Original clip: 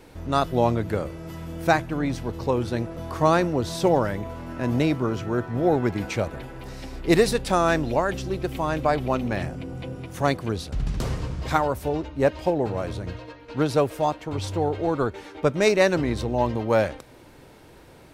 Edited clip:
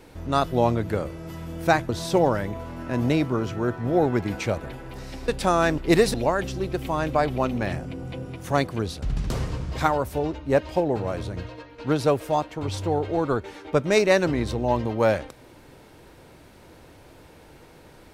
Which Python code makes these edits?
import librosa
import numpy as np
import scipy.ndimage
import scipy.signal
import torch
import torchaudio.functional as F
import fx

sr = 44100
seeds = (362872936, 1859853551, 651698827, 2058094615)

y = fx.edit(x, sr, fx.cut(start_s=1.89, length_s=1.7),
    fx.move(start_s=6.98, length_s=0.36, to_s=7.84), tone=tone)